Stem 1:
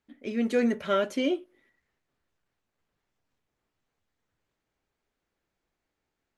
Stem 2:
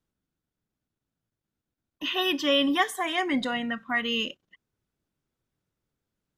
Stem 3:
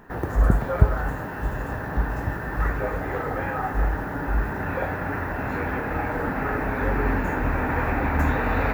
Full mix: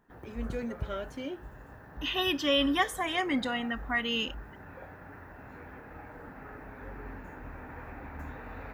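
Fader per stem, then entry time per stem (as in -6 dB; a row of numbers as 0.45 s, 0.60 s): -11.5 dB, -3.0 dB, -20.0 dB; 0.00 s, 0.00 s, 0.00 s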